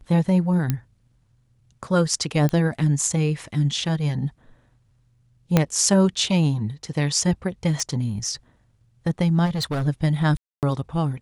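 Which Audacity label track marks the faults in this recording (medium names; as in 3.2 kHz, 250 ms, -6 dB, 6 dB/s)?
0.700000	0.700000	pop -9 dBFS
2.490000	2.490000	pop -12 dBFS
5.570000	5.570000	pop -3 dBFS
7.800000	7.800000	pop
9.450000	9.880000	clipped -21.5 dBFS
10.370000	10.630000	dropout 258 ms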